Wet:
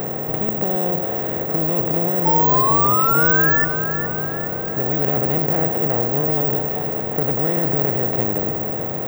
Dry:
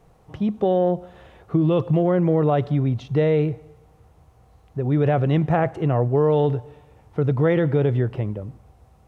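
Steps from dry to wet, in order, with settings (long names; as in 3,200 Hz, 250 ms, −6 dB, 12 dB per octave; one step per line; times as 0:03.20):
compressor on every frequency bin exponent 0.2
floating-point word with a short mantissa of 6 bits
sound drawn into the spectrogram rise, 0:02.25–0:03.65, 870–1,800 Hz −10 dBFS
bad sample-rate conversion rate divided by 2×, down none, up zero stuff
on a send: echo with a time of its own for lows and highs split 450 Hz, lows 292 ms, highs 416 ms, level −10 dB
on the sum: level −10.5 dB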